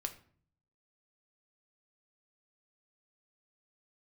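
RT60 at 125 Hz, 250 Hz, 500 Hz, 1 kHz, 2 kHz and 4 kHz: 0.95, 0.75, 0.55, 0.50, 0.45, 0.35 seconds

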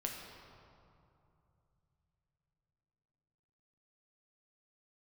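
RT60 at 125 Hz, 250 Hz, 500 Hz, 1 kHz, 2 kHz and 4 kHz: 4.9, 3.5, 2.8, 2.7, 1.9, 1.5 seconds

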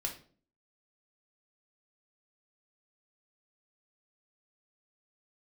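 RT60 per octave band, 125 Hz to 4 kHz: 0.55, 0.65, 0.50, 0.40, 0.35, 0.35 seconds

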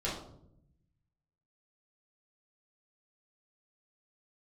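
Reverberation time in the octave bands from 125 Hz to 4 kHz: 1.6, 1.2, 0.85, 0.60, 0.40, 0.40 seconds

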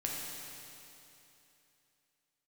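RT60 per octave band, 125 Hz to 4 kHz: 3.0, 3.0, 3.0, 3.0, 3.0, 3.0 seconds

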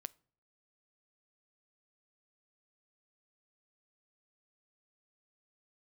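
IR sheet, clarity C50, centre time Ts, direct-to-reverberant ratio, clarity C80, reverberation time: 25.5 dB, 2 ms, 17.5 dB, 30.0 dB, 0.55 s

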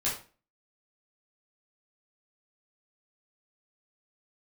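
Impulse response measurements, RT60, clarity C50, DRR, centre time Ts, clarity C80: 0.35 s, 6.5 dB, −8.0 dB, 32 ms, 12.0 dB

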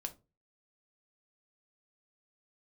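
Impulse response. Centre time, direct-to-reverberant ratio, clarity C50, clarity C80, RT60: 5 ms, 5.5 dB, 16.5 dB, 24.5 dB, 0.30 s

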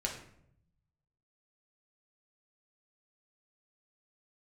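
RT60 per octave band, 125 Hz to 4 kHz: 1.4, 1.1, 0.80, 0.65, 0.55, 0.45 seconds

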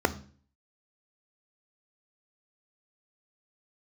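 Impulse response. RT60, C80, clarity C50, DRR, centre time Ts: 0.45 s, 21.5 dB, 17.0 dB, 10.5 dB, 6 ms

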